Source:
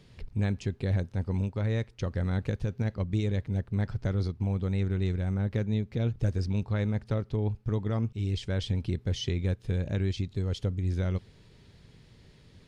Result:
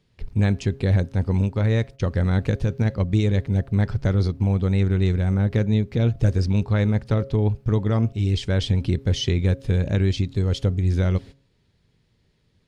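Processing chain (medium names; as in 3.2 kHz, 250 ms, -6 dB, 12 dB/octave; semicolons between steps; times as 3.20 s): gate -44 dBFS, range -18 dB; de-hum 136.3 Hz, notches 5; trim +8.5 dB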